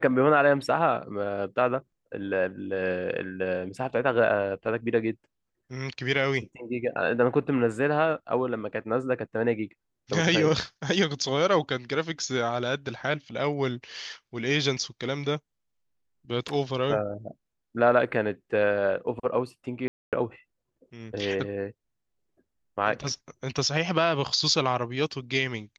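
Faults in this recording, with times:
19.88–20.13 s: dropout 247 ms

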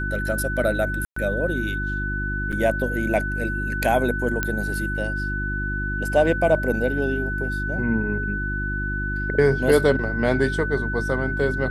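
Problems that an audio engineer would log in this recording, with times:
hum 50 Hz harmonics 7 -28 dBFS
whine 1.5 kHz -27 dBFS
1.05–1.16 s: dropout 114 ms
2.52–2.53 s: dropout 6.8 ms
4.43 s: pop -8 dBFS

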